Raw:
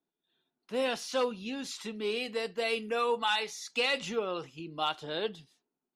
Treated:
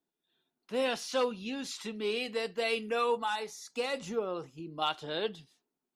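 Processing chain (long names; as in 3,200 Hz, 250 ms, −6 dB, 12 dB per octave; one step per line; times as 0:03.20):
0:03.17–0:04.82: parametric band 2,900 Hz −10.5 dB 1.7 octaves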